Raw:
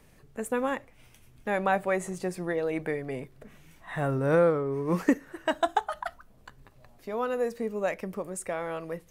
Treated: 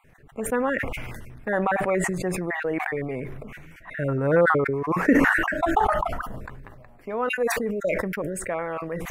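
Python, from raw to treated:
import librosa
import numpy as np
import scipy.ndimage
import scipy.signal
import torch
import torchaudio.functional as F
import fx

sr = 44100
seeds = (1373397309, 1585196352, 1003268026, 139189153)

y = fx.spec_dropout(x, sr, seeds[0], share_pct=28)
y = fx.high_shelf_res(y, sr, hz=2900.0, db=-9.5, q=1.5)
y = fx.sustainer(y, sr, db_per_s=28.0)
y = F.gain(torch.from_numpy(y), 3.0).numpy()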